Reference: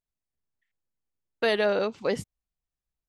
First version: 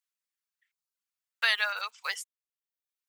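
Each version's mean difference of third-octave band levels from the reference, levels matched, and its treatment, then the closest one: 13.0 dB: block floating point 7-bit; reverb removal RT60 0.72 s; HPF 1200 Hz 24 dB/oct; gain +5 dB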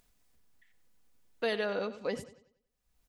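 2.5 dB: comb 4.1 ms, depth 32%; upward compressor, threshold -40 dBFS; analogue delay 94 ms, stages 4096, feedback 38%, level -14 dB; gain -8 dB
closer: second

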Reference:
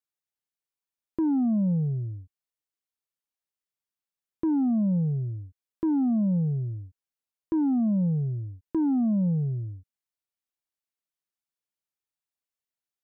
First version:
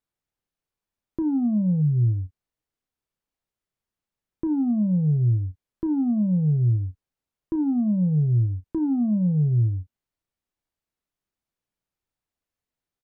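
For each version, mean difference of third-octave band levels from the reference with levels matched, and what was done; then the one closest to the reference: 1.5 dB: limiter -31 dBFS, peak gain reduction 10 dB; tilt -2.5 dB/oct; doubler 33 ms -13 dB; spectral gain 1.82–2.07, 390–810 Hz -16 dB; gain +6 dB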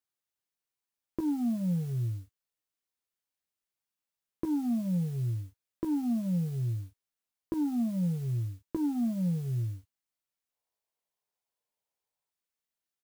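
9.0 dB: spectral gain 10.53–12.3, 390–1100 Hz +8 dB; compressor 5:1, threshold -30 dBFS, peak gain reduction 6.5 dB; modulation noise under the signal 27 dB; doubler 17 ms -7.5 dB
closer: first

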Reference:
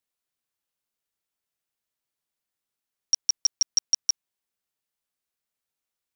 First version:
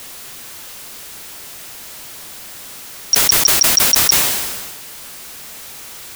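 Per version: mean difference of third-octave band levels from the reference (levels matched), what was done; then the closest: 16.5 dB: zero-crossing step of -35.5 dBFS; sustainer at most 35 dB/s; gain +8.5 dB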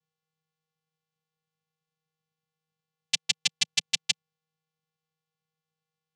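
8.5 dB: vocoder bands 4, square 158 Hz; gain -2.5 dB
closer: second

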